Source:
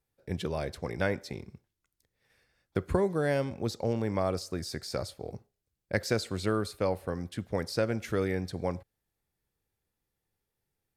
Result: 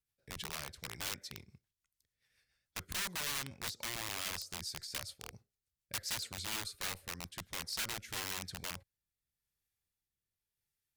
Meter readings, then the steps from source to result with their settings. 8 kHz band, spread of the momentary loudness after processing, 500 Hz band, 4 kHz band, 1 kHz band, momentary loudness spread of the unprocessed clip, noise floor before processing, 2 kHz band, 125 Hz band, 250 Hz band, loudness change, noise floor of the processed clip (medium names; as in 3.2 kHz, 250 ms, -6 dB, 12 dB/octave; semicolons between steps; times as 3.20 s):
+5.5 dB, 10 LU, -23.5 dB, +2.5 dB, -9.0 dB, 11 LU, -85 dBFS, -4.0 dB, -16.5 dB, -20.0 dB, -7.5 dB, under -85 dBFS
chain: rotary cabinet horn 7 Hz, later 0.9 Hz, at 7.05 s; integer overflow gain 28 dB; amplifier tone stack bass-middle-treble 5-5-5; trim +5.5 dB